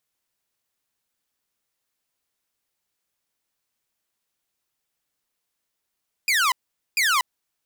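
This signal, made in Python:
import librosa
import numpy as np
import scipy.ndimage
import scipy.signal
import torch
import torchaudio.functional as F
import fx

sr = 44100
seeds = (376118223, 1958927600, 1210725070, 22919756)

y = fx.laser_zaps(sr, level_db=-15.0, start_hz=2500.0, end_hz=960.0, length_s=0.24, wave='saw', shots=2, gap_s=0.45)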